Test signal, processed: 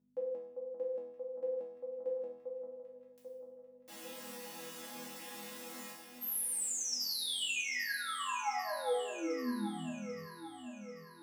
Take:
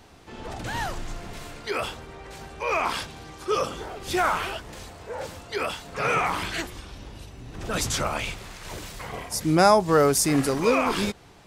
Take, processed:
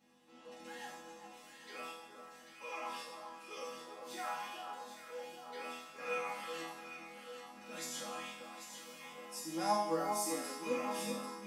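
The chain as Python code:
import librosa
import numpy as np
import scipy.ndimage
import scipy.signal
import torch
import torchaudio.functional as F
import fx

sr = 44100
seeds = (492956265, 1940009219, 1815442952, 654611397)

y = x + 0.85 * np.pad(x, (int(3.7 * sr / 1000.0), 0))[:len(x)]
y = fx.add_hum(y, sr, base_hz=50, snr_db=22)
y = scipy.signal.sosfilt(scipy.signal.butter(2, 210.0, 'highpass', fs=sr, output='sos'), y)
y = fx.high_shelf(y, sr, hz=8300.0, db=3.0)
y = fx.resonator_bank(y, sr, root=52, chord='major', decay_s=0.82)
y = fx.echo_alternate(y, sr, ms=396, hz=1400.0, feedback_pct=73, wet_db=-5.5)
y = y * 10.0 ** (2.5 / 20.0)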